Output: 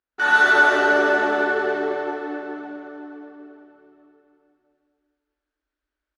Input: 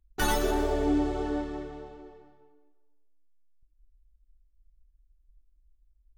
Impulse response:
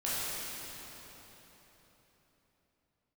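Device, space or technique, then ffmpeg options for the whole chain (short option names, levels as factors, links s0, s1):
station announcement: -filter_complex "[0:a]highpass=360,lowpass=3900,equalizer=f=1500:t=o:w=0.59:g=11,aecho=1:1:105|265.3:0.501|0.631[s0];[1:a]atrim=start_sample=2205[s1];[s0][s1]afir=irnorm=-1:irlink=0"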